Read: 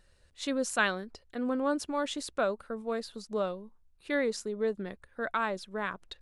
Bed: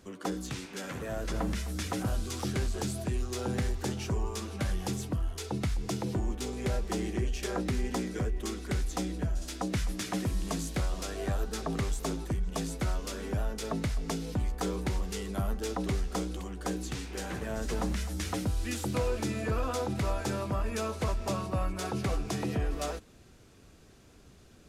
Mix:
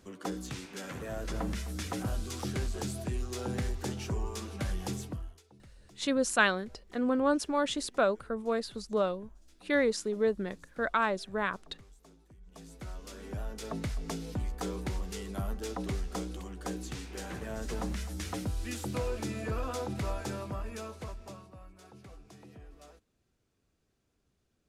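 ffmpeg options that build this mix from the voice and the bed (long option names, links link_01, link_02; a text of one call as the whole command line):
ffmpeg -i stem1.wav -i stem2.wav -filter_complex "[0:a]adelay=5600,volume=2.5dB[link_01];[1:a]volume=19.5dB,afade=type=out:start_time=4.95:duration=0.47:silence=0.0707946,afade=type=in:start_time=12.38:duration=1.47:silence=0.0794328,afade=type=out:start_time=20.11:duration=1.44:silence=0.141254[link_02];[link_01][link_02]amix=inputs=2:normalize=0" out.wav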